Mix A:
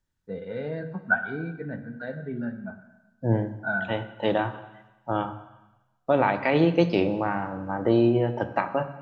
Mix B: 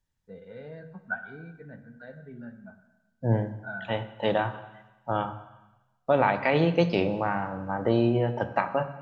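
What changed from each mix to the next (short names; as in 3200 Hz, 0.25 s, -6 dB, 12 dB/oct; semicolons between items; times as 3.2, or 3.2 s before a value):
first voice -9.5 dB; master: add bell 320 Hz -6.5 dB 0.45 oct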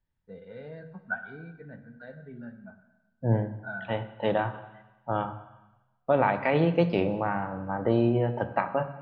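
second voice: add air absorption 250 m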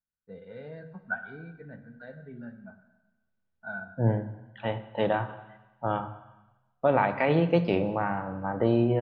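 second voice: entry +0.75 s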